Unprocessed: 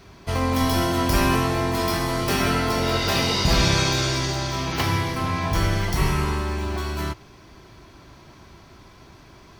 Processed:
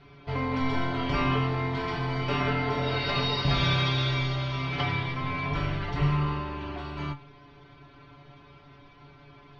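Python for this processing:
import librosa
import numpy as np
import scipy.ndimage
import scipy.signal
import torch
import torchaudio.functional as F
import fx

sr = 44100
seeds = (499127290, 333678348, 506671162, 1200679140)

y = scipy.signal.sosfilt(scipy.signal.butter(4, 3700.0, 'lowpass', fs=sr, output='sos'), x)
y = fx.stiff_resonator(y, sr, f0_hz=140.0, decay_s=0.21, stiffness=0.002)
y = y * 10.0 ** (6.0 / 20.0)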